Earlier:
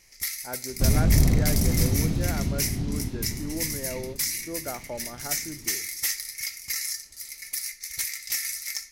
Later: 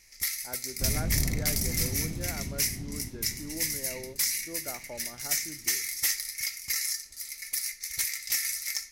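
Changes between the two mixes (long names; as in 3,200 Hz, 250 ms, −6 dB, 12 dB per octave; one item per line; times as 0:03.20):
speech −6.5 dB
second sound −10.0 dB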